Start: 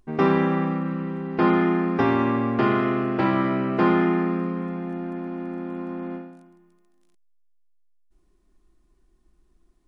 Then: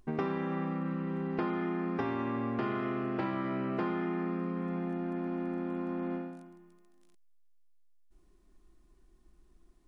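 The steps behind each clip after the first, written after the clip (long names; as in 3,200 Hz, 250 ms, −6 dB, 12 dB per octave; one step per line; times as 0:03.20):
downward compressor 6 to 1, threshold −31 dBFS, peak gain reduction 15.5 dB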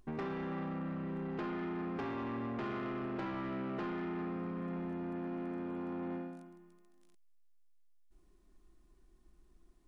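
soft clipping −32 dBFS, distortion −13 dB
level −2 dB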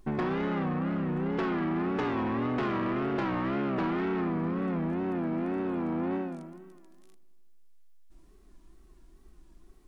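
tape wow and flutter 130 cents
feedback echo with a low-pass in the loop 80 ms, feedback 74%, low-pass 4,500 Hz, level −22 dB
level +9 dB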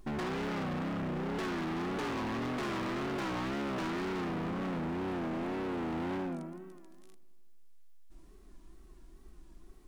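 hard clipping −35.5 dBFS, distortion −9 dB
level +1.5 dB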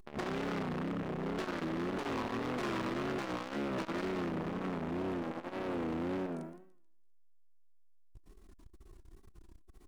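saturating transformer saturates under 200 Hz
level +2 dB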